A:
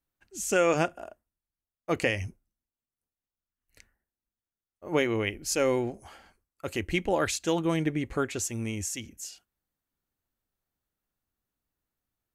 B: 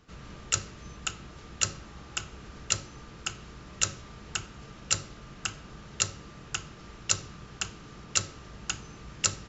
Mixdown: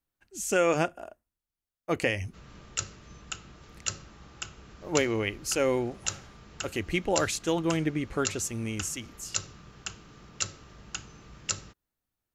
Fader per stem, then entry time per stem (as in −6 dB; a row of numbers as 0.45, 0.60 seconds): −0.5, −4.5 decibels; 0.00, 2.25 seconds